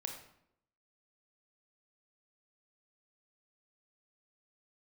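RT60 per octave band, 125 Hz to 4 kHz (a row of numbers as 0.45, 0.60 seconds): 0.80, 0.85, 0.80, 0.70, 0.60, 0.50 seconds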